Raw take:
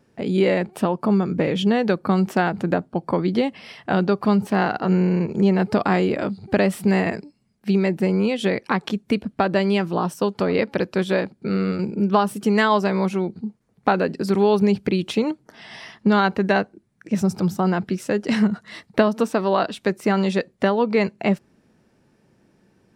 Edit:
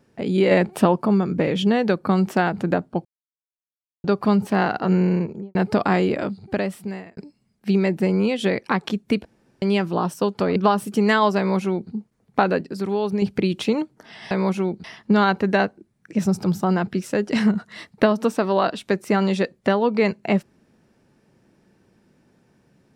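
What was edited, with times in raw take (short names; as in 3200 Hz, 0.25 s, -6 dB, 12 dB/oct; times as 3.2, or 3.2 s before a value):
0.51–1.02 gain +4.5 dB
3.05–4.04 mute
5.1–5.55 studio fade out
6.11–7.17 fade out
9.25–9.62 room tone
10.56–12.05 cut
12.87–13.4 copy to 15.8
14.1–14.71 gain -6 dB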